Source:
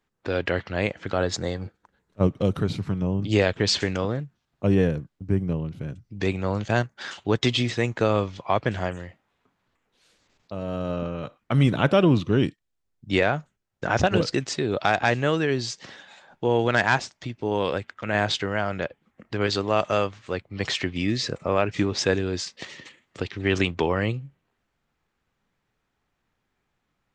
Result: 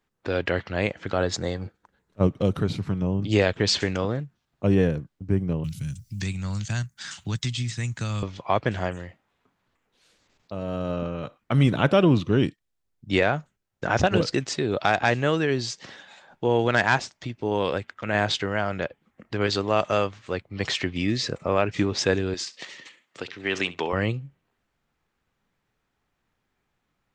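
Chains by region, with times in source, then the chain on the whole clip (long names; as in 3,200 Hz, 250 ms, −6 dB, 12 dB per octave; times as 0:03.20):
0:05.64–0:08.23: drawn EQ curve 160 Hz 0 dB, 440 Hz −22 dB, 1,500 Hz −8 dB, 3,200 Hz −5 dB, 8,700 Hz +10 dB + multiband upward and downward compressor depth 70%
0:22.34–0:23.93: high-pass filter 140 Hz + low-shelf EQ 470 Hz −9 dB + flutter between parallel walls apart 11.4 metres, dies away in 0.22 s
whole clip: no processing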